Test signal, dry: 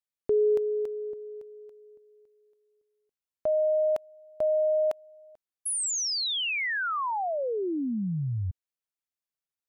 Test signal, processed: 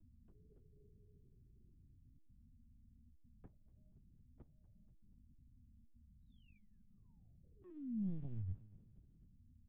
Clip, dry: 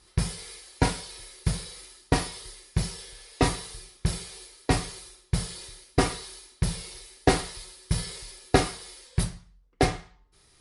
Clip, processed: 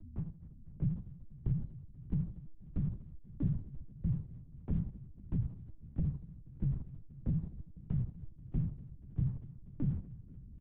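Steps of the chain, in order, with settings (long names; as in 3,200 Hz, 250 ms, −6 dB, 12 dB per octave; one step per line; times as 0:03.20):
fade in at the beginning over 1.02 s
inverse Chebyshev low-pass filter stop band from 530 Hz, stop band 50 dB
noise gate −56 dBFS, range −10 dB
parametric band 140 Hz +5 dB 0.84 octaves
mains-hum notches 50/100/150 Hz
leveller curve on the samples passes 1
mains hum 50 Hz, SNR 25 dB
brickwall limiter −20 dBFS
flanger 0.37 Hz, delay 3.1 ms, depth 5.5 ms, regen −71%
repeating echo 242 ms, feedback 43%, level −20.5 dB
linear-prediction vocoder at 8 kHz pitch kept
multiband upward and downward compressor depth 40%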